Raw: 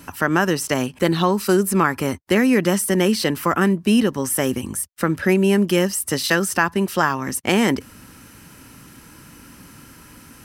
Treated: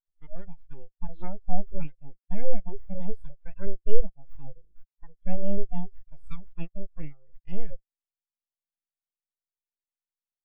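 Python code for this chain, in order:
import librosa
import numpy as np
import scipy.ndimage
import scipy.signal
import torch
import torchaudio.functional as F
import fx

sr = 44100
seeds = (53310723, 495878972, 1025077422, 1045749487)

y = fx.noise_reduce_blind(x, sr, reduce_db=9)
y = np.abs(y)
y = fx.spectral_expand(y, sr, expansion=2.5)
y = F.gain(torch.from_numpy(y), 1.0).numpy()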